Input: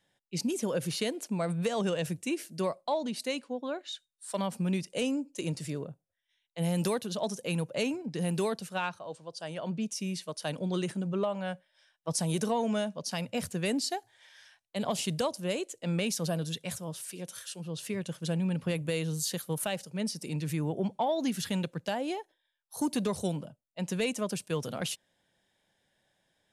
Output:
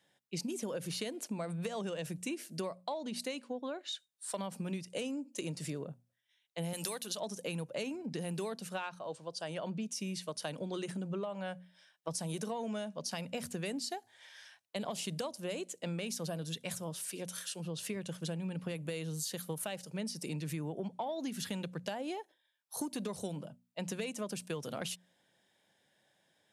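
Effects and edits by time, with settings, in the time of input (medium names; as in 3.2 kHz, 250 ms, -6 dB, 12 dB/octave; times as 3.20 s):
6.73–7.20 s: tilt EQ +3 dB/octave
whole clip: high-pass 120 Hz; hum notches 60/120/180/240 Hz; compression, threshold -37 dBFS; trim +1.5 dB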